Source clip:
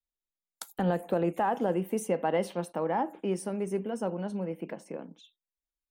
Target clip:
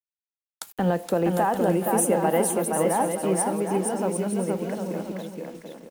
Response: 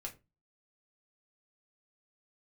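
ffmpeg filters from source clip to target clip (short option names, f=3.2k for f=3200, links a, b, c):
-filter_complex "[0:a]asettb=1/sr,asplit=3[a][b][c];[a]atrim=end=1.294[d];[b]atrim=start=1.29:end=3.42,asetpts=PTS-STARTPTS,afade=t=in:d=0.004:c=qsin,afade=t=out:st=2.126:d=0.004:c=qsin,highshelf=f=6.9k:t=q:w=1.5:g=11.5[e];[c]atrim=start=3.416[f];[d][e]acrossfade=d=0.004:c1=hsin:c2=qsin[g];[g][f]acrossfade=d=0.004:c1=qsin:c2=hsin,acrusher=bits=8:mix=0:aa=0.000001,aecho=1:1:470|752|921.2|1023|1084:0.631|0.398|0.251|0.158|0.1,volume=4.5dB"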